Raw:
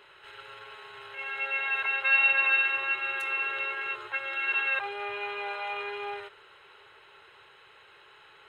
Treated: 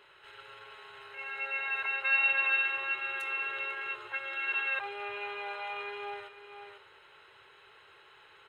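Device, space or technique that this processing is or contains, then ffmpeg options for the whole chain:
ducked delay: -filter_complex "[0:a]asplit=3[link_01][link_02][link_03];[link_02]adelay=495,volume=-2.5dB[link_04];[link_03]apad=whole_len=396228[link_05];[link_04][link_05]sidechaincompress=threshold=-51dB:ratio=4:attack=16:release=569[link_06];[link_01][link_06]amix=inputs=2:normalize=0,asettb=1/sr,asplit=3[link_07][link_08][link_09];[link_07]atrim=end=1.034[link_10];[link_08]atrim=start=1.03:end=2.27,asetpts=PTS-STARTPTS,afade=type=in:duration=0.004:curve=qsin,afade=type=out:start_time=1.236:duration=0.004:curve=qsin,bandreject=frequency=3300:width=11[link_11];[link_09]atrim=start=2.266[link_12];[link_10][link_11]acrossfade=duration=0.004:curve1=hsin:curve2=qsin[link_13];[link_13][link_12]acrossfade=duration=0.004:curve1=qsin:curve2=hsin,volume=-4dB"

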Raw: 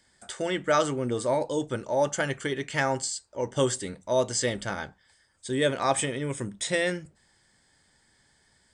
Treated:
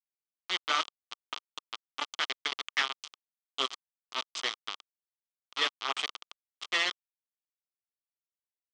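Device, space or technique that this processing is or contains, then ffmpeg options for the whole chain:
hand-held game console: -af "equalizer=frequency=125:width_type=o:width=1:gain=-8,equalizer=frequency=500:width_type=o:width=1:gain=-5,equalizer=frequency=1000:width_type=o:width=1:gain=-11,equalizer=frequency=2000:width_type=o:width=1:gain=9,equalizer=frequency=4000:width_type=o:width=1:gain=-5,acrusher=bits=3:mix=0:aa=0.000001,highpass=470,equalizer=frequency=560:width_type=q:width=4:gain=-9,equalizer=frequency=1200:width_type=q:width=4:gain=9,equalizer=frequency=1700:width_type=q:width=4:gain=-7,equalizer=frequency=3200:width_type=q:width=4:gain=9,lowpass=frequency=5400:width=0.5412,lowpass=frequency=5400:width=1.3066,volume=-2.5dB"

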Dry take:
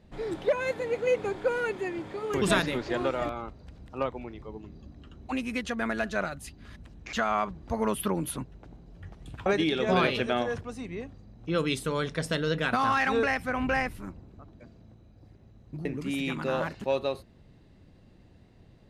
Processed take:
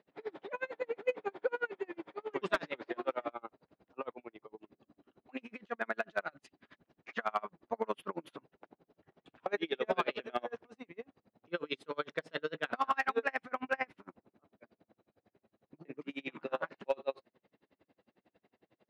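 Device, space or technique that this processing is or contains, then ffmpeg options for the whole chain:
helicopter radio: -af "highpass=370,lowpass=2900,aeval=exprs='val(0)*pow(10,-35*(0.5-0.5*cos(2*PI*11*n/s))/20)':channel_layout=same,asoftclip=type=hard:threshold=-20dB"

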